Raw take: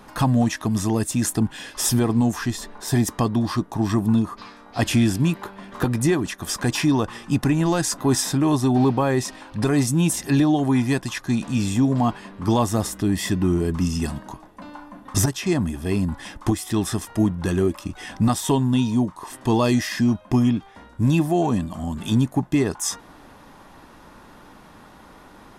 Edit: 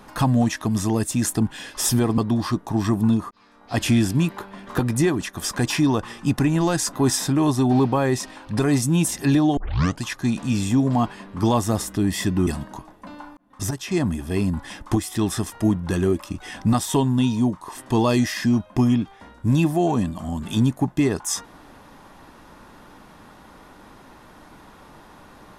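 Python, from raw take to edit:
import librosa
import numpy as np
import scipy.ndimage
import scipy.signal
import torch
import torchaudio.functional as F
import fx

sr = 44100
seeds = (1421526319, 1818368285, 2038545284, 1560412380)

y = fx.edit(x, sr, fx.cut(start_s=2.18, length_s=1.05),
    fx.fade_in_span(start_s=4.36, length_s=0.55),
    fx.tape_start(start_s=10.62, length_s=0.45),
    fx.cut(start_s=13.52, length_s=0.5),
    fx.fade_in_span(start_s=14.92, length_s=0.66), tone=tone)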